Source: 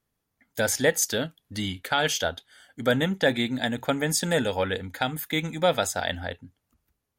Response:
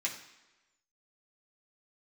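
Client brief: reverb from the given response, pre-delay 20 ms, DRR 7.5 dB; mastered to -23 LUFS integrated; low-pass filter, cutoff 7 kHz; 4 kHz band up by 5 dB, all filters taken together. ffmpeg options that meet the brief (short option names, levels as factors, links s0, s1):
-filter_complex "[0:a]lowpass=7000,equalizer=f=4000:t=o:g=6.5,asplit=2[s0][s1];[1:a]atrim=start_sample=2205,adelay=20[s2];[s1][s2]afir=irnorm=-1:irlink=0,volume=0.266[s3];[s0][s3]amix=inputs=2:normalize=0,volume=1.19"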